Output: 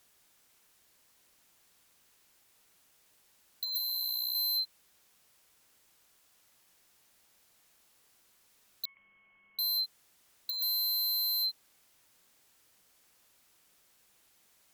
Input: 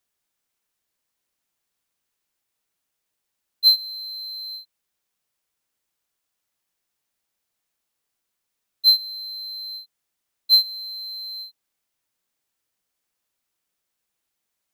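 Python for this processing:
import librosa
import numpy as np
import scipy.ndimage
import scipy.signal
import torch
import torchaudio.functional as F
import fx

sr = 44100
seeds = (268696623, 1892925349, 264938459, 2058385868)

y = fx.cheby_harmonics(x, sr, harmonics=(5,), levels_db=(-28,), full_scale_db=-24.0)
y = fx.freq_invert(y, sr, carrier_hz=3200, at=(8.85, 9.59))
y = fx.fold_sine(y, sr, drive_db=11, ceiling_db=-24.0)
y = fx.detune_double(y, sr, cents=26, at=(3.77, 4.34), fade=0.02)
y = F.gain(torch.from_numpy(y), -3.5).numpy()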